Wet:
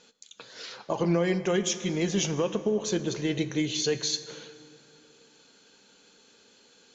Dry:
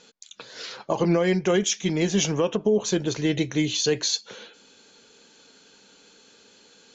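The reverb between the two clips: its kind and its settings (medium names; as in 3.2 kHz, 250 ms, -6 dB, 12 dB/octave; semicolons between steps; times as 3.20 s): plate-style reverb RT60 2.8 s, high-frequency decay 0.55×, pre-delay 0 ms, DRR 11.5 dB; trim -4.5 dB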